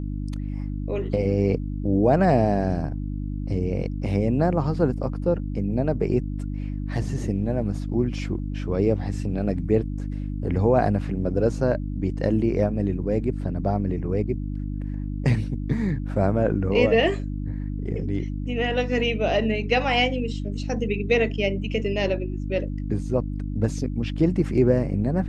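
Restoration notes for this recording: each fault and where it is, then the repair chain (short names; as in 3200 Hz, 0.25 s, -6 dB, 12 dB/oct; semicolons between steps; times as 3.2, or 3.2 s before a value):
hum 50 Hz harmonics 6 -29 dBFS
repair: de-hum 50 Hz, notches 6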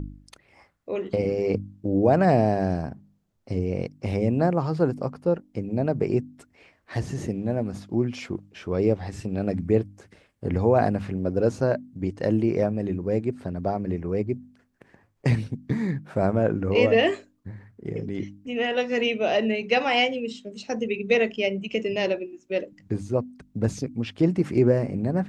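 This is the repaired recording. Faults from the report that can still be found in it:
none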